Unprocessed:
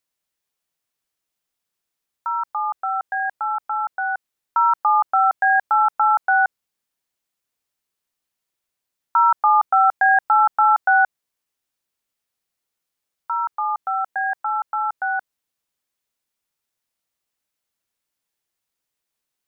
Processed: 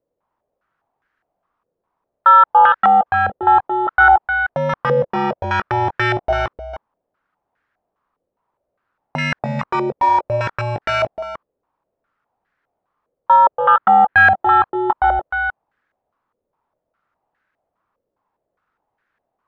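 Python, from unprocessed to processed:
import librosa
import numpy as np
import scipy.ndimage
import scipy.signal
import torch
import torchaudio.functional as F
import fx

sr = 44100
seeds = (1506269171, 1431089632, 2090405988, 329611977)

y = fx.low_shelf(x, sr, hz=450.0, db=4.0, at=(9.43, 10.09))
y = fx.fold_sine(y, sr, drive_db=15, ceiling_db=-6.5)
y = fx.air_absorb(y, sr, metres=150.0, at=(13.36, 14.16))
y = y + 10.0 ** (-9.0 / 20.0) * np.pad(y, (int(306 * sr / 1000.0), 0))[:len(y)]
y = fx.filter_held_lowpass(y, sr, hz=4.9, low_hz=510.0, high_hz=1600.0)
y = y * 10.0 ** (-7.0 / 20.0)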